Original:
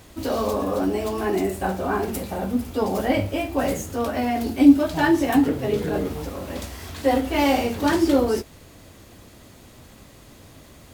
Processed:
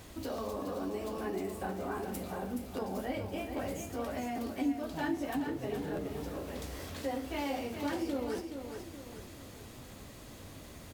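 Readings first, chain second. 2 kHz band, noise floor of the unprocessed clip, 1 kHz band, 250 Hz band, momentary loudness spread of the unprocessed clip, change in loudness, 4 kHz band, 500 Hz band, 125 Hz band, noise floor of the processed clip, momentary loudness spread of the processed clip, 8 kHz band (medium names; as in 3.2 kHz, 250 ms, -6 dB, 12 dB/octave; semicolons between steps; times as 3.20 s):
-14.0 dB, -48 dBFS, -14.0 dB, -15.5 dB, 10 LU, -15.0 dB, -13.0 dB, -13.5 dB, -12.5 dB, -50 dBFS, 14 LU, -11.5 dB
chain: compression 2:1, threshold -41 dBFS, peak gain reduction 18 dB; on a send: feedback delay 423 ms, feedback 44%, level -7.5 dB; on the sum: crackling interface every 0.80 s, samples 512, repeat, from 0.36 s; trim -3 dB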